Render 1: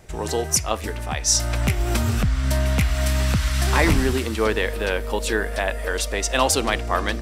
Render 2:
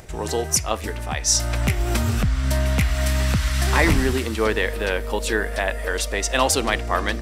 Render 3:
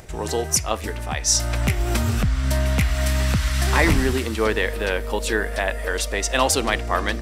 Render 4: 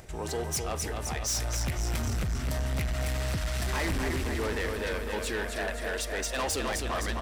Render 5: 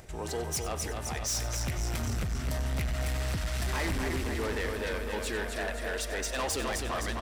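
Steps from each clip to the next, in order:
dynamic equaliser 1,900 Hz, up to +3 dB, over −38 dBFS, Q 5.5; upward compression, threshold −38 dBFS
no processing that can be heard
repeating echo 257 ms, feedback 60%, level −7 dB; soft clipping −20 dBFS, distortion −9 dB; level −6 dB
single-tap delay 94 ms −14.5 dB; level −1.5 dB

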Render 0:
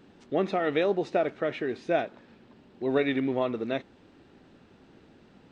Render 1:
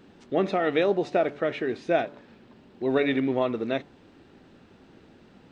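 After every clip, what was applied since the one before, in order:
hum removal 144.8 Hz, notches 7
level +2.5 dB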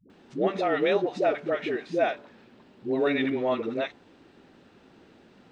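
low-shelf EQ 150 Hz −8 dB
all-pass dispersion highs, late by 100 ms, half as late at 380 Hz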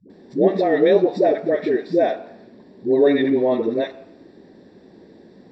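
convolution reverb RT60 0.75 s, pre-delay 3 ms, DRR 11 dB
level −5.5 dB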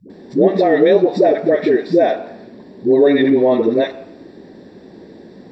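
downward compressor 2 to 1, threshold −18 dBFS, peak gain reduction 5 dB
level +7.5 dB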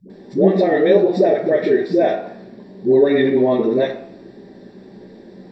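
rectangular room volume 380 cubic metres, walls furnished, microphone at 1.2 metres
level −3.5 dB

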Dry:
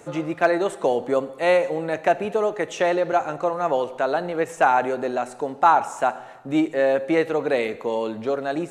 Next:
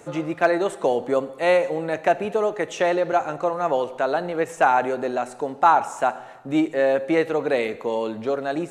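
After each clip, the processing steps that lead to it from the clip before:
no processing that can be heard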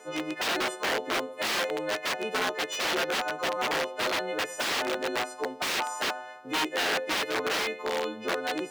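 every partial snapped to a pitch grid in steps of 3 semitones
wrap-around overflow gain 17 dB
three-way crossover with the lows and the highs turned down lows −17 dB, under 230 Hz, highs −12 dB, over 5,100 Hz
level −4 dB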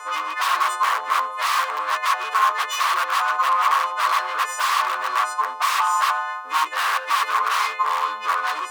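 in parallel at −2 dB: brickwall limiter −27 dBFS, peak gain reduction 11 dB
on the sum: hard clipping −29.5 dBFS, distortion −7 dB
high-pass with resonance 1,100 Hz, resonance Q 10
level +4.5 dB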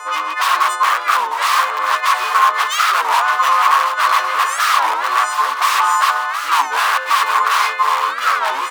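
on a send: repeating echo 721 ms, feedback 54%, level −9 dB
on the sum: wow of a warped record 33 1/3 rpm, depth 250 cents
level +5.5 dB

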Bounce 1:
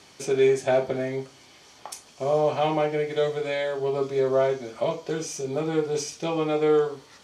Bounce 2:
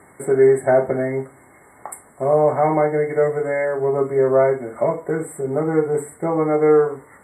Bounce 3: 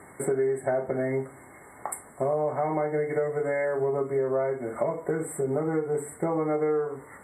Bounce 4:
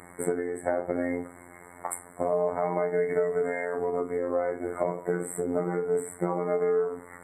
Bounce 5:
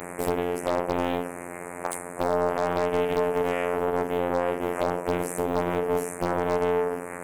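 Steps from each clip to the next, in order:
brick-wall band-stop 2,200–7,500 Hz; level +6.5 dB
downward compressor, threshold −24 dBFS, peak gain reduction 13.5 dB
phases set to zero 88.1 Hz; level +2.5 dB
compressor on every frequency bin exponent 0.6; wave folding −12 dBFS; highs frequency-modulated by the lows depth 0.72 ms

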